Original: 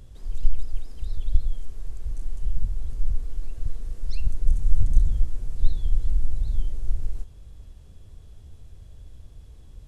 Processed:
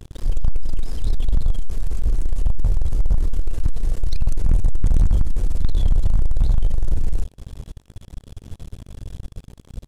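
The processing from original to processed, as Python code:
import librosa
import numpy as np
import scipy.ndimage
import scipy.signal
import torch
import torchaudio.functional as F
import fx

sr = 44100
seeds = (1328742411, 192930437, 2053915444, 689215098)

y = fx.leveller(x, sr, passes=5)
y = y * 10.0 ** (-5.5 / 20.0)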